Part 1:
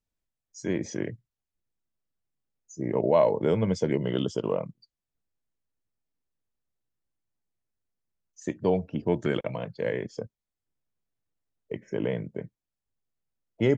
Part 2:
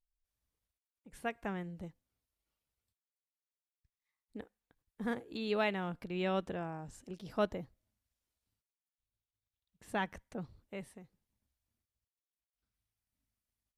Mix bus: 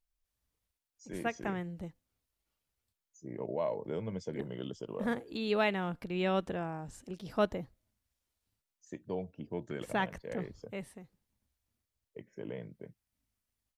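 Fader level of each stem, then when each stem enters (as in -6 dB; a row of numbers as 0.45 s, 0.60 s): -13.0 dB, +3.0 dB; 0.45 s, 0.00 s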